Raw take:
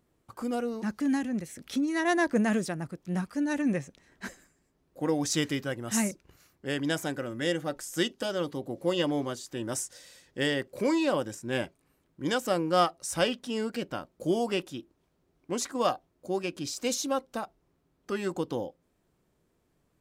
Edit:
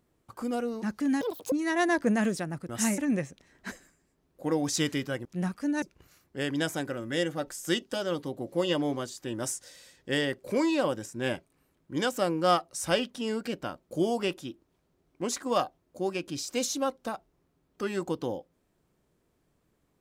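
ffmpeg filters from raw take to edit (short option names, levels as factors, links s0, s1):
-filter_complex "[0:a]asplit=7[s0][s1][s2][s3][s4][s5][s6];[s0]atrim=end=1.214[s7];[s1]atrim=start=1.21:end=1.81,asetpts=PTS-STARTPTS,asetrate=85113,aresample=44100[s8];[s2]atrim=start=1.806:end=2.982[s9];[s3]atrim=start=5.818:end=6.112[s10];[s4]atrim=start=3.548:end=5.822[s11];[s5]atrim=start=2.978:end=3.552[s12];[s6]atrim=start=6.108[s13];[s7][s8]acrossfade=d=0.004:c1=hsin:c2=hsin[s14];[s14][s9]acrossfade=d=0.004:c1=hsin:c2=hsin[s15];[s15][s10]acrossfade=d=0.004:c1=hsin:c2=hsin[s16];[s16][s11]acrossfade=d=0.004:c1=hsin:c2=hsin[s17];[s17][s12]acrossfade=d=0.004:c1=hsin:c2=hsin[s18];[s18][s13]acrossfade=d=0.004:c1=hsin:c2=hsin"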